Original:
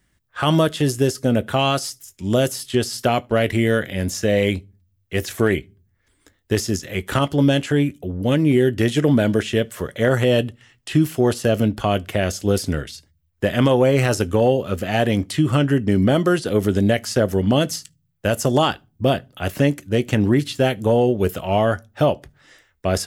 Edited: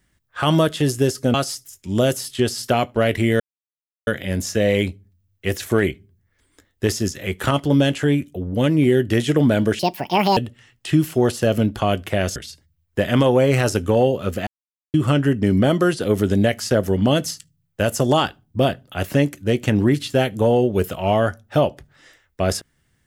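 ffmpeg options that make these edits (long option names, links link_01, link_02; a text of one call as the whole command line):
ffmpeg -i in.wav -filter_complex "[0:a]asplit=8[link_01][link_02][link_03][link_04][link_05][link_06][link_07][link_08];[link_01]atrim=end=1.342[link_09];[link_02]atrim=start=1.688:end=3.75,asetpts=PTS-STARTPTS,afade=type=out:start_time=2.058:duration=0.004:curve=hsin,apad=pad_dur=0.67[link_10];[link_03]atrim=start=3.75:end=9.474,asetpts=PTS-STARTPTS,afade=type=in:duration=0.004:curve=hsin[link_11];[link_04]atrim=start=9.47:end=10.39,asetpts=PTS-STARTPTS,asetrate=70119,aresample=44100[link_12];[link_05]atrim=start=10.386:end=12.382[link_13];[link_06]atrim=start=12.808:end=14.92,asetpts=PTS-STARTPTS,afade=type=out:start_time=2.108:duration=0.004:curve=hsin[link_14];[link_07]atrim=start=14.92:end=15.39,asetpts=PTS-STARTPTS,volume=0[link_15];[link_08]atrim=start=15.39,asetpts=PTS-STARTPTS,afade=type=in:duration=0.004:curve=hsin[link_16];[link_10][link_11]concat=n=2:v=0:a=1[link_17];[link_09][link_17]acrossfade=duration=0.004:curve1=hsin:curve2=hsin[link_18];[link_18][link_12]acrossfade=duration=0.004:curve1=hsin:curve2=hsin[link_19];[link_19][link_13]acrossfade=duration=0.004:curve1=hsin:curve2=hsin[link_20];[link_14][link_15][link_16]concat=n=3:v=0:a=1[link_21];[link_20][link_21]acrossfade=duration=0.004:curve1=hsin:curve2=hsin" out.wav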